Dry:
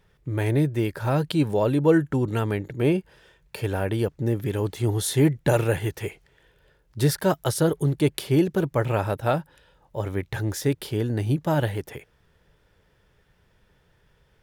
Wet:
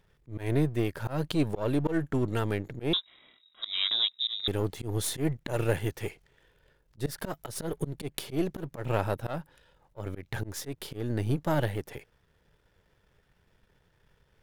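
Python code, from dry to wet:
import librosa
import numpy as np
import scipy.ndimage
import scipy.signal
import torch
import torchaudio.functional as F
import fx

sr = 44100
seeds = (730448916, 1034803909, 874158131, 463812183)

y = np.where(x < 0.0, 10.0 ** (-7.0 / 20.0) * x, x)
y = fx.auto_swell(y, sr, attack_ms=149.0)
y = fx.freq_invert(y, sr, carrier_hz=3800, at=(2.93, 4.48))
y = y * 10.0 ** (-2.0 / 20.0)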